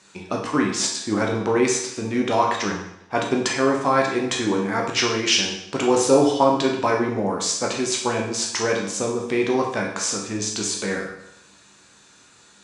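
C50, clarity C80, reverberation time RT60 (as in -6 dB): 4.5 dB, 7.5 dB, 0.80 s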